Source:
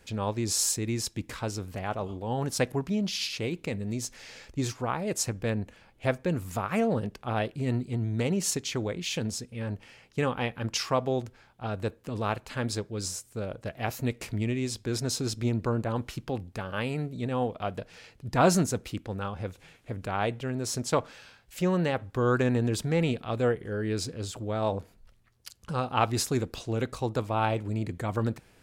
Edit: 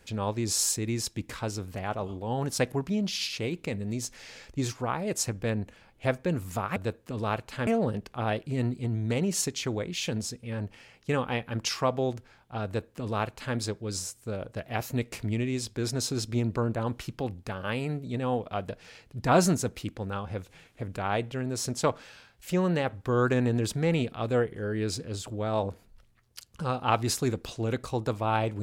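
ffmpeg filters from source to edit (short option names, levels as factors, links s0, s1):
-filter_complex "[0:a]asplit=3[s0][s1][s2];[s0]atrim=end=6.762[s3];[s1]atrim=start=11.738:end=12.652[s4];[s2]atrim=start=6.758[s5];[s3][s4]acrossfade=d=0.004:c1=hsin:c2=hsin[s6];[s6][s5]acrossfade=d=0.004:c1=hsin:c2=hsin"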